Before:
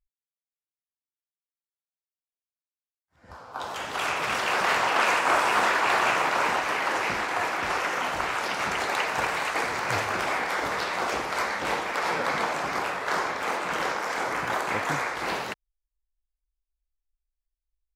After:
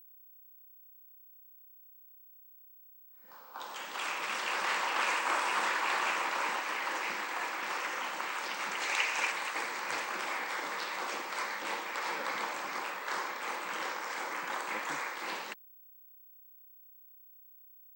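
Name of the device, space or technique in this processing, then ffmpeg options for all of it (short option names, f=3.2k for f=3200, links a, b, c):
old television with a line whistle: -filter_complex "[0:a]highpass=f=230:w=0.5412,highpass=f=230:w=1.3066,equalizer=f=260:t=q:w=4:g=-6,equalizer=f=420:t=q:w=4:g=-7,equalizer=f=680:t=q:w=4:g=-9,equalizer=f=1.4k:t=q:w=4:g=-3,equalizer=f=8.2k:t=q:w=4:g=4,lowpass=f=9k:w=0.5412,lowpass=f=9k:w=1.3066,aeval=exprs='val(0)+0.00447*sin(2*PI*15734*n/s)':c=same,asettb=1/sr,asplit=3[a][b][c];[a]atrim=end=8.824[d];[b]atrim=start=8.82:end=9.32,asetpts=PTS-STARTPTS,afade=t=in:d=0.004:c=qsin,afade=t=out:st=0.496:d=0.004:c=qsin,equalizer=f=160:t=o:w=0.67:g=-10,equalizer=f=2.5k:t=o:w=0.67:g=8,equalizer=f=6.3k:t=o:w=0.67:g=7[e];[c]atrim=start=9.316[f];[d][e]acrossfade=d=0.004:c1=hsin:c2=qsin[g];[g][f]acrossfade=d=0.004:c1=qsin:c2=hsin,volume=-6.5dB"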